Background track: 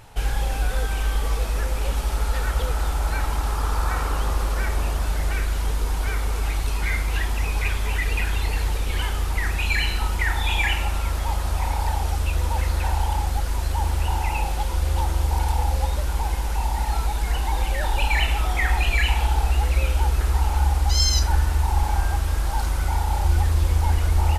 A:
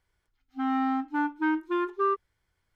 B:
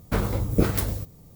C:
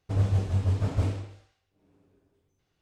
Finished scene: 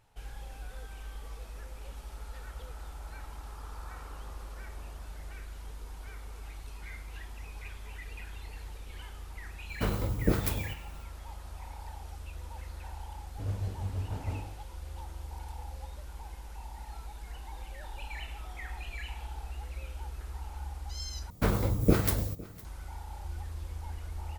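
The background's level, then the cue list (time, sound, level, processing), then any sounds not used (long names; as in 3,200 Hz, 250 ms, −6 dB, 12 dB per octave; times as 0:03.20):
background track −20 dB
0:09.69: mix in B −6 dB
0:13.29: mix in C −10 dB
0:21.30: overwrite with B −2.5 dB + single-tap delay 508 ms −22 dB
not used: A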